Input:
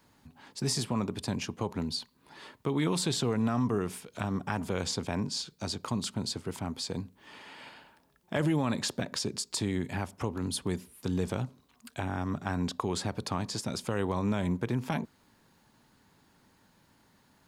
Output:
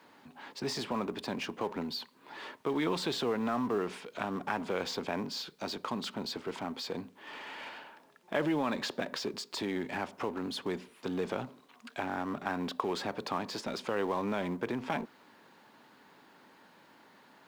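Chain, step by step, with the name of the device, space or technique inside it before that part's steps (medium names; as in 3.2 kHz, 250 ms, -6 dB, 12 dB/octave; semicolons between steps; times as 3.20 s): phone line with mismatched companding (band-pass 310–3400 Hz; companding laws mixed up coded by mu)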